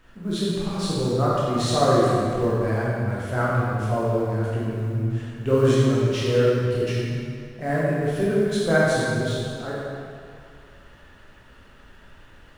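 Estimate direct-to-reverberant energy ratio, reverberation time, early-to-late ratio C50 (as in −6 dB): −8.0 dB, 2.3 s, −3.5 dB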